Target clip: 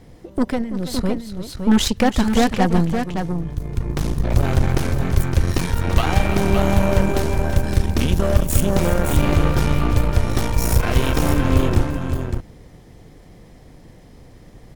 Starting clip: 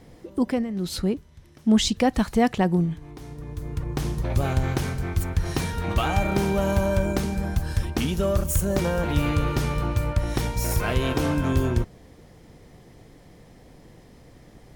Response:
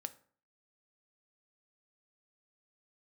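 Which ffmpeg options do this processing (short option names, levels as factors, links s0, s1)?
-filter_complex "[0:a]lowshelf=f=110:g=6,aeval=exprs='0.355*(cos(1*acos(clip(val(0)/0.355,-1,1)))-cos(1*PI/2))+0.0562*(cos(6*acos(clip(val(0)/0.355,-1,1)))-cos(6*PI/2))':c=same,asplit=2[s0][s1];[s1]aecho=0:1:333|563:0.237|0.473[s2];[s0][s2]amix=inputs=2:normalize=0,volume=1.19"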